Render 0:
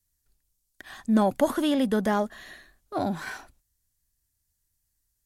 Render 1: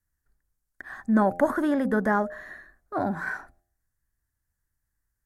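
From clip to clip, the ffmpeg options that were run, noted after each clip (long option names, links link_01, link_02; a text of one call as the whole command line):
ffmpeg -i in.wav -af "highshelf=frequency=2200:width_type=q:width=3:gain=-9.5,bandreject=frequency=87.65:width_type=h:width=4,bandreject=frequency=175.3:width_type=h:width=4,bandreject=frequency=262.95:width_type=h:width=4,bandreject=frequency=350.6:width_type=h:width=4,bandreject=frequency=438.25:width_type=h:width=4,bandreject=frequency=525.9:width_type=h:width=4,bandreject=frequency=613.55:width_type=h:width=4,bandreject=frequency=701.2:width_type=h:width=4,bandreject=frequency=788.85:width_type=h:width=4" out.wav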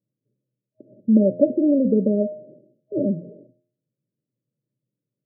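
ffmpeg -i in.wav -filter_complex "[0:a]afftfilt=real='re*between(b*sr/4096,110,630)':imag='im*between(b*sr/4096,110,630)':win_size=4096:overlap=0.75,asplit=2[link_01][link_02];[link_02]acompressor=threshold=-32dB:ratio=6,volume=-1.5dB[link_03];[link_01][link_03]amix=inputs=2:normalize=0,volume=4.5dB" out.wav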